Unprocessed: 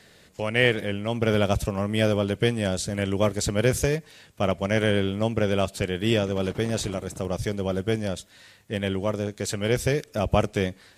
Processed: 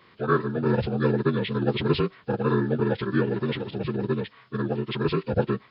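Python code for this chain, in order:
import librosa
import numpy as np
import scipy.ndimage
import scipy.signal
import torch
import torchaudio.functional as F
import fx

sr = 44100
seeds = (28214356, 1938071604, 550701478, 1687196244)

y = fx.partial_stretch(x, sr, pct=75)
y = fx.stretch_vocoder(y, sr, factor=0.52)
y = F.gain(torch.from_numpy(y), 1.5).numpy()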